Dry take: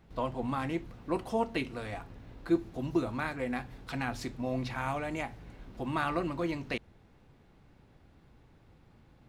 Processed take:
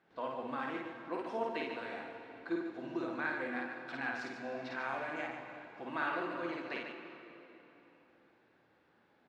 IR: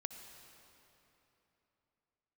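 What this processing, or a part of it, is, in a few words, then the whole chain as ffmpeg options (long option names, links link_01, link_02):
station announcement: -filter_complex "[0:a]highpass=320,lowpass=4400,equalizer=frequency=1600:width_type=o:width=0.29:gain=8,aecho=1:1:52.48|145.8:0.794|0.447[link_01];[1:a]atrim=start_sample=2205[link_02];[link_01][link_02]afir=irnorm=-1:irlink=0,volume=-4dB"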